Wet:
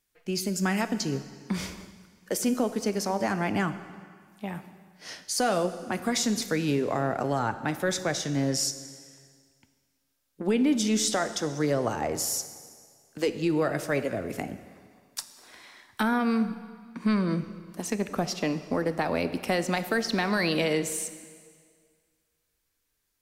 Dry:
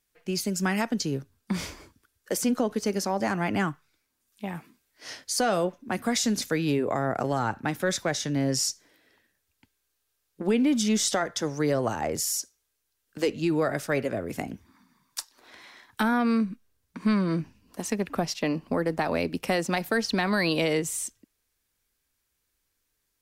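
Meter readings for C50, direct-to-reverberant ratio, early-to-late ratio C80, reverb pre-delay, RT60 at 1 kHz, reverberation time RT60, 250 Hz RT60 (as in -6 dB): 12.0 dB, 11.0 dB, 13.0 dB, 6 ms, 1.9 s, 1.9 s, 1.8 s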